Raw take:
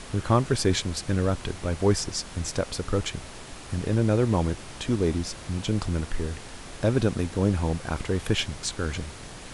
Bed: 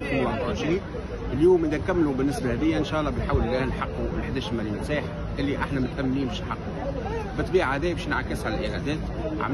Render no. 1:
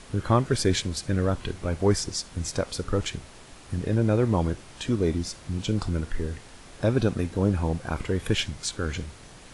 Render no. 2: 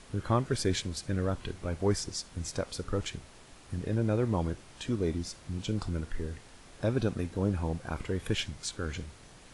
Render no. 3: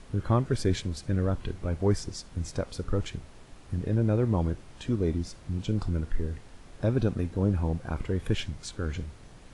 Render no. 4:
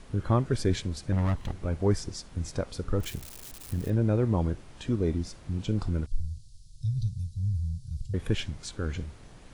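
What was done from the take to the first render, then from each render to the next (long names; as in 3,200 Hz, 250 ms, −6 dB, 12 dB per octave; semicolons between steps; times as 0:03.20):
noise reduction from a noise print 6 dB
level −6 dB
spectral tilt −1.5 dB per octave
0:01.12–0:01.53: lower of the sound and its delayed copy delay 1 ms; 0:03.00–0:03.90: spike at every zero crossing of −33 dBFS; 0:06.06–0:08.14: elliptic band-stop filter 130–4,400 Hz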